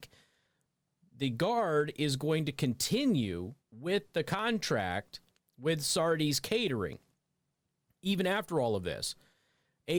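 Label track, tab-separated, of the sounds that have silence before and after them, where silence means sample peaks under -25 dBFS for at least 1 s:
1.220000	6.850000	sound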